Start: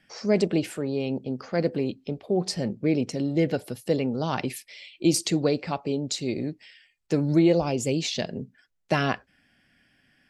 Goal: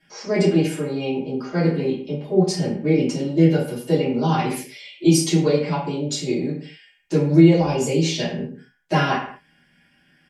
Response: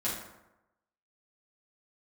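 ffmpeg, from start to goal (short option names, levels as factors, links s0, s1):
-filter_complex "[0:a]aecho=1:1:4.9:0.66[s0];[1:a]atrim=start_sample=2205,afade=t=out:st=0.44:d=0.01,atrim=end_sample=19845,asetrate=66150,aresample=44100[s1];[s0][s1]afir=irnorm=-1:irlink=0,volume=1.19"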